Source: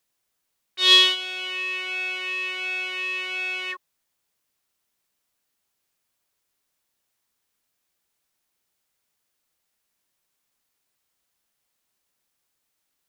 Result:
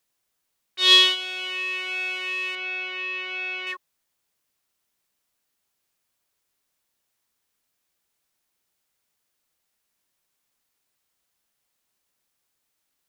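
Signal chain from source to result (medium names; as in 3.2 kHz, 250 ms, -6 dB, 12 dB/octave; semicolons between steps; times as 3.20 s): 2.55–3.67 s: distance through air 140 m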